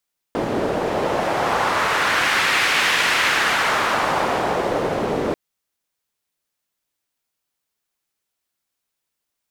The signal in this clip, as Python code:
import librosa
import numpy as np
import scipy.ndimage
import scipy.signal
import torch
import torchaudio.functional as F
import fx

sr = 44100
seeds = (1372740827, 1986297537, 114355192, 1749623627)

y = fx.wind(sr, seeds[0], length_s=4.99, low_hz=440.0, high_hz=2100.0, q=1.3, gusts=1, swing_db=4)